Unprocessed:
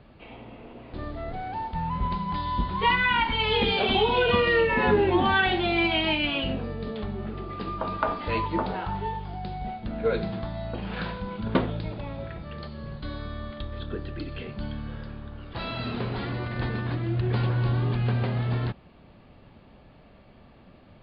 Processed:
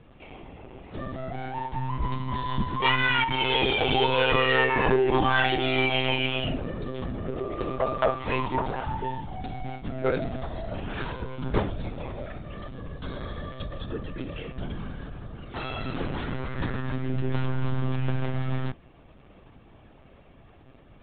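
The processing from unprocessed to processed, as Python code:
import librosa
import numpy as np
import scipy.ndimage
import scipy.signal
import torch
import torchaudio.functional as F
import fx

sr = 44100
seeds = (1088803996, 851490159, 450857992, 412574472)

y = fx.spec_box(x, sr, start_s=7.26, length_s=0.85, low_hz=360.0, high_hz=730.0, gain_db=9)
y = np.clip(y, -10.0 ** (-16.0 / 20.0), 10.0 ** (-16.0 / 20.0))
y = fx.lpc_monotone(y, sr, seeds[0], pitch_hz=130.0, order=16)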